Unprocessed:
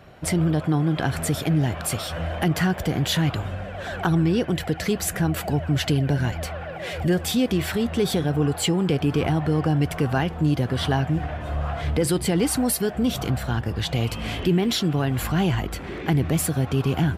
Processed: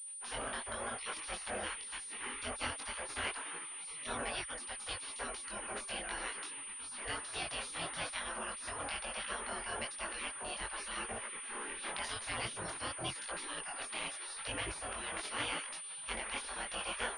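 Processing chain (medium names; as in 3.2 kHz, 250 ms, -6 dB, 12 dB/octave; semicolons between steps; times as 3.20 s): spectral gate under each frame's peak -25 dB weak; chorus voices 4, 0.88 Hz, delay 21 ms, depth 4.1 ms; class-D stage that switches slowly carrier 9.3 kHz; trim +2.5 dB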